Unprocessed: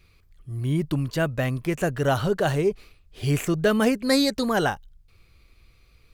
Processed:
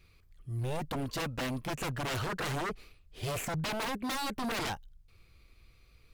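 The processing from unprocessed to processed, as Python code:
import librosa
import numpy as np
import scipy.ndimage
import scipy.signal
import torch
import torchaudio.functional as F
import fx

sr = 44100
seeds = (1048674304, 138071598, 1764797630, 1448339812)

y = fx.comb(x, sr, ms=3.7, depth=0.4, at=(0.79, 1.63))
y = fx.peak_eq(y, sr, hz=5800.0, db=fx.line((3.55, -6.0), (4.43, -14.0)), octaves=1.4, at=(3.55, 4.43), fade=0.02)
y = 10.0 ** (-25.0 / 20.0) * (np.abs((y / 10.0 ** (-25.0 / 20.0) + 3.0) % 4.0 - 2.0) - 1.0)
y = y * 10.0 ** (-4.0 / 20.0)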